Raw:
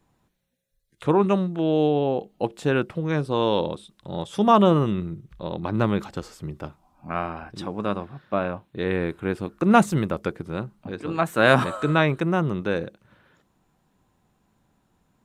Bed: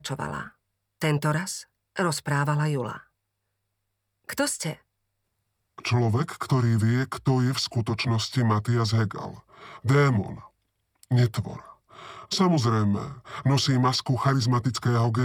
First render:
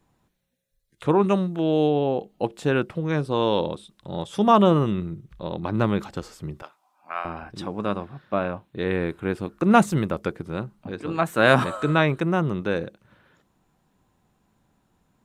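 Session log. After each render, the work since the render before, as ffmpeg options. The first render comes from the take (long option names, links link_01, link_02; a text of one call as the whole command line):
ffmpeg -i in.wav -filter_complex "[0:a]asettb=1/sr,asplit=3[link_01][link_02][link_03];[link_01]atrim=end=1.244[link_04];[link_02]atrim=start=1.24:end=1.9,asetpts=PTS-STARTPTS,afade=type=in:duration=0.004:curve=qsin,afade=type=out:start_time=0.656:duration=0.004:curve=qsin,highshelf=frequency=7300:gain=7.5[link_05];[link_03]atrim=start=1.896[link_06];[link_04][link_05]acrossfade=duration=0.004:curve1=hsin:curve2=qsin[link_07];[link_07][link_06]acrossfade=duration=0.004:curve1=qsin:curve2=hsin,asettb=1/sr,asplit=3[link_08][link_09][link_10];[link_08]atrim=end=6.624[link_11];[link_09]atrim=start=6.62:end=7.25,asetpts=PTS-STARTPTS,afade=type=in:duration=0.004:curve=qsin,afade=type=out:start_time=0.626:duration=0.004:curve=qsin,highpass=830[link_12];[link_10]atrim=start=7.246[link_13];[link_11][link_12]acrossfade=duration=0.004:curve1=hsin:curve2=qsin[link_14];[link_14][link_13]acrossfade=duration=0.004:curve1=qsin:curve2=hsin" out.wav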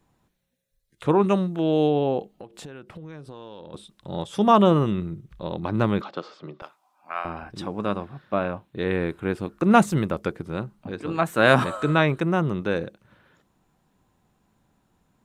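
ffmpeg -i in.wav -filter_complex "[0:a]asplit=3[link_01][link_02][link_03];[link_01]afade=type=out:start_time=2.35:duration=0.02[link_04];[link_02]acompressor=threshold=-36dB:ratio=16:attack=3.2:release=140:knee=1:detection=peak,afade=type=in:start_time=2.35:duration=0.02,afade=type=out:start_time=3.73:duration=0.02[link_05];[link_03]afade=type=in:start_time=3.73:duration=0.02[link_06];[link_04][link_05][link_06]amix=inputs=3:normalize=0,asettb=1/sr,asplit=3[link_07][link_08][link_09];[link_07]atrim=end=6.014[link_10];[link_08]atrim=start=6.01:end=6.62,asetpts=PTS-STARTPTS,afade=type=in:duration=0.004:curve=qsin,afade=type=out:start_time=0.606:duration=0.004:curve=qsin,highpass=frequency=190:width=0.5412,highpass=frequency=190:width=1.3066,equalizer=frequency=230:width_type=q:width=4:gain=-8,equalizer=frequency=600:width_type=q:width=4:gain=6,equalizer=frequency=1200:width_type=q:width=4:gain=7,equalizer=frequency=1800:width_type=q:width=4:gain=-3,equalizer=frequency=3600:width_type=q:width=4:gain=4,lowpass=frequency=4600:width=0.5412,lowpass=frequency=4600:width=1.3066[link_11];[link_09]atrim=start=6.616[link_12];[link_10][link_11]acrossfade=duration=0.004:curve1=hsin:curve2=qsin[link_13];[link_13][link_12]acrossfade=duration=0.004:curve1=qsin:curve2=hsin" out.wav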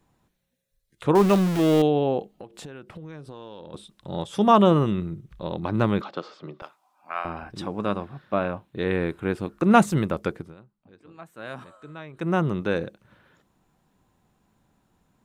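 ffmpeg -i in.wav -filter_complex "[0:a]asettb=1/sr,asplit=3[link_01][link_02][link_03];[link_01]atrim=end=1.154[link_04];[link_02]atrim=start=1.15:end=1.82,asetpts=PTS-STARTPTS,afade=type=in:duration=0.004:curve=qsin,afade=type=out:start_time=0.666:duration=0.004:curve=qsin,aeval=exprs='val(0)+0.5*0.0708*sgn(val(0))':channel_layout=same[link_05];[link_03]atrim=start=1.816[link_06];[link_04][link_05]acrossfade=duration=0.004:curve1=hsin:curve2=qsin[link_07];[link_07][link_06]acrossfade=duration=0.004:curve1=qsin:curve2=hsin,asplit=3[link_08][link_09][link_10];[link_08]atrim=end=10.55,asetpts=PTS-STARTPTS,afade=type=out:start_time=10.35:duration=0.2:silence=0.0944061[link_11];[link_09]atrim=start=10.55:end=12.13,asetpts=PTS-STARTPTS,volume=-20.5dB[link_12];[link_10]atrim=start=12.13,asetpts=PTS-STARTPTS,afade=type=in:duration=0.2:silence=0.0944061[link_13];[link_11][link_12][link_13]concat=n=3:v=0:a=1" out.wav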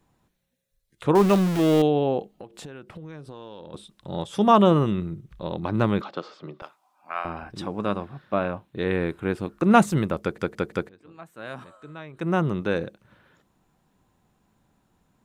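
ffmpeg -i in.wav -filter_complex "[0:a]asplit=5[link_01][link_02][link_03][link_04][link_05];[link_01]atrim=end=10.382[link_06];[link_02]atrim=start=10.208:end=10.382[link_07];[link_03]atrim=start=10.208:end=10.382[link_08];[link_04]atrim=start=10.208:end=10.382[link_09];[link_05]atrim=start=10.888[link_10];[link_06][link_07]acrossfade=duration=0.004:curve1=hsin:curve2=hsin[link_11];[link_11][link_08]acrossfade=duration=0.004:curve1=hsin:curve2=hsin[link_12];[link_12][link_09]acrossfade=duration=0.004:curve1=hsin:curve2=hsin[link_13];[link_13][link_10]acrossfade=duration=0.004:curve1=hsin:curve2=hsin" out.wav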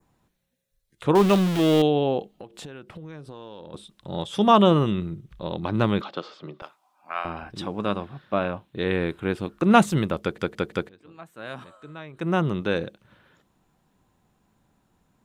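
ffmpeg -i in.wav -af "adynamicequalizer=threshold=0.00355:dfrequency=3300:dqfactor=1.9:tfrequency=3300:tqfactor=1.9:attack=5:release=100:ratio=0.375:range=3:mode=boostabove:tftype=bell" out.wav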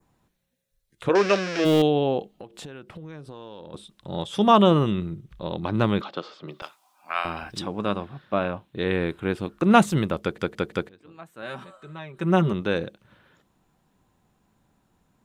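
ffmpeg -i in.wav -filter_complex "[0:a]asplit=3[link_01][link_02][link_03];[link_01]afade=type=out:start_time=1.08:duration=0.02[link_04];[link_02]highpass=360,equalizer=frequency=520:width_type=q:width=4:gain=7,equalizer=frequency=880:width_type=q:width=4:gain=-8,equalizer=frequency=1600:width_type=q:width=4:gain=10,equalizer=frequency=2400:width_type=q:width=4:gain=7,equalizer=frequency=3400:width_type=q:width=4:gain=-5,equalizer=frequency=5400:width_type=q:width=4:gain=10,lowpass=frequency=6500:width=0.5412,lowpass=frequency=6500:width=1.3066,afade=type=in:start_time=1.08:duration=0.02,afade=type=out:start_time=1.64:duration=0.02[link_05];[link_03]afade=type=in:start_time=1.64:duration=0.02[link_06];[link_04][link_05][link_06]amix=inputs=3:normalize=0,asettb=1/sr,asplit=3[link_07][link_08][link_09];[link_07]atrim=end=6.484[link_10];[link_08]atrim=start=6.48:end=7.59,asetpts=PTS-STARTPTS,afade=type=in:duration=0.004:curve=qsin,afade=type=out:start_time=1.106:duration=0.004:curve=qsin,highshelf=frequency=2300:gain=11.5[link_11];[link_09]atrim=start=7.586[link_12];[link_10][link_11]acrossfade=duration=0.004:curve1=hsin:curve2=qsin[link_13];[link_13][link_12]acrossfade=duration=0.004:curve1=qsin:curve2=hsin,asettb=1/sr,asplit=3[link_14][link_15][link_16];[link_14]atrim=end=11.424[link_17];[link_15]atrim=start=11.42:end=12.53,asetpts=PTS-STARTPTS,afade=type=in:duration=0.004:curve=qsin,afade=type=out:start_time=1.106:duration=0.004:curve=qsin,aecho=1:1:5.2:0.65,atrim=end_sample=48951[link_18];[link_16]atrim=start=12.526[link_19];[link_17][link_18]acrossfade=duration=0.004:curve1=hsin:curve2=qsin[link_20];[link_20][link_19]acrossfade=duration=0.004:curve1=qsin:curve2=hsin" out.wav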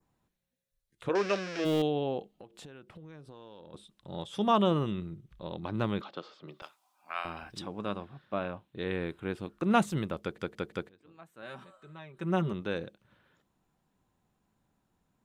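ffmpeg -i in.wav -af "volume=-9dB" out.wav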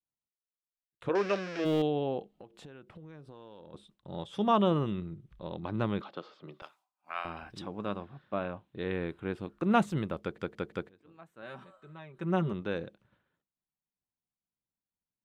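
ffmpeg -i in.wav -af "agate=range=-33dB:threshold=-59dB:ratio=3:detection=peak,highshelf=frequency=4400:gain=-9" out.wav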